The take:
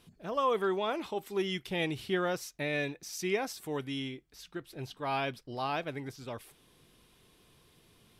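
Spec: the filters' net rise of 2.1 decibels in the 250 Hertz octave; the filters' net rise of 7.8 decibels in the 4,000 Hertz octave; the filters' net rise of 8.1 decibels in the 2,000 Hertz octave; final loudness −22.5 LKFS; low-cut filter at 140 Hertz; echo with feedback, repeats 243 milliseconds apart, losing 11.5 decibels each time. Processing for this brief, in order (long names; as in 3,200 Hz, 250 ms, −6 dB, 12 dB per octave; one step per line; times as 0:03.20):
high-pass filter 140 Hz
parametric band 250 Hz +3.5 dB
parametric band 2,000 Hz +8 dB
parametric band 4,000 Hz +7 dB
repeating echo 243 ms, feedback 27%, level −11.5 dB
level +7.5 dB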